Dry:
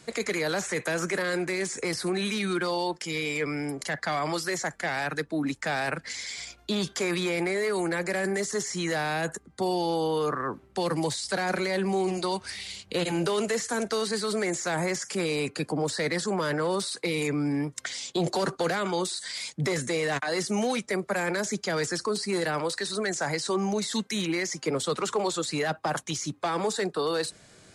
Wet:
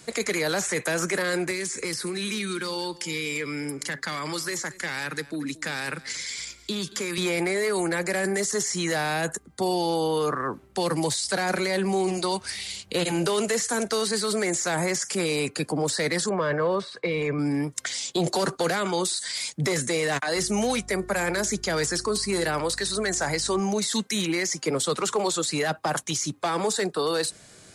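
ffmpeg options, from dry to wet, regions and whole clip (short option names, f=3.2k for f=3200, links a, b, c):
-filter_complex "[0:a]asettb=1/sr,asplit=3[a][b][c];[a]atrim=end=1.514[d];[b]atrim=start=1.51:end=7.18,asetpts=PTS-STARTPTS,afade=t=in:d=0.004:c=qsin,afade=t=out:st=5.666:d=0.004:c=qsin,equalizer=f=700:t=o:w=0.38:g=-13.5,acrossover=split=110|2600[e][f][g];[e]acompressor=threshold=-59dB:ratio=4[h];[f]acompressor=threshold=-31dB:ratio=4[i];[g]acompressor=threshold=-36dB:ratio=4[j];[h][i][j]amix=inputs=3:normalize=0,aecho=1:1:228:0.112,atrim=end_sample=250047[k];[c]atrim=start=7.176[l];[d][k]acrossfade=d=0.004:c1=hsin:c2=qsin[m];[m][l]acrossfade=d=0.004:c1=qsin:c2=hsin,asettb=1/sr,asplit=3[n][o][p];[n]atrim=end=16.294[q];[o]atrim=start=16.29:end=17.39,asetpts=PTS-STARTPTS,afade=t=in:d=0.004:c=qsin,afade=t=out:st=1.096:d=0.004:c=qsin,lowpass=2.3k,aecho=1:1:1.8:0.4,atrim=end_sample=48510[r];[p]atrim=start=17.386[s];[q][r]acrossfade=d=0.004:c1=hsin:c2=qsin[t];[t][s]acrossfade=d=0.004:c1=qsin:c2=hsin,asettb=1/sr,asplit=3[u][v][w];[u]atrim=end=20.364[x];[v]atrim=start=20.36:end=23.6,asetpts=PTS-STARTPTS,afade=t=in:d=0.004:c=qsin,afade=t=out:st=3.236:d=0.004:c=qsin,bandreject=f=362.6:t=h:w=4,bandreject=f=725.2:t=h:w=4,bandreject=f=1.0878k:t=h:w=4,bandreject=f=1.4504k:t=h:w=4,bandreject=f=1.813k:t=h:w=4,aeval=exprs='val(0)+0.00501*(sin(2*PI*50*n/s)+sin(2*PI*2*50*n/s)/2+sin(2*PI*3*50*n/s)/3+sin(2*PI*4*50*n/s)/4+sin(2*PI*5*50*n/s)/5)':c=same[y];[w]atrim=start=23.596[z];[x][y]acrossfade=d=0.004:c1=hsin:c2=qsin[aa];[aa][z]acrossfade=d=0.004:c1=qsin:c2=hsin,acontrast=25,highshelf=f=7.1k:g=8.5,volume=-3dB"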